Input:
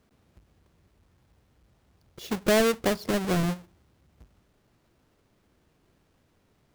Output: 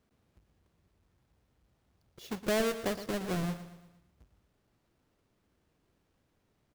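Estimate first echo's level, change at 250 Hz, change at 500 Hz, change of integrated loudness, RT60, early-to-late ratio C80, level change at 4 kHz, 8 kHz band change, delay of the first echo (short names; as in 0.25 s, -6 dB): -12.5 dB, -7.5 dB, -7.5 dB, -7.5 dB, none, none, -7.5 dB, -7.5 dB, 0.116 s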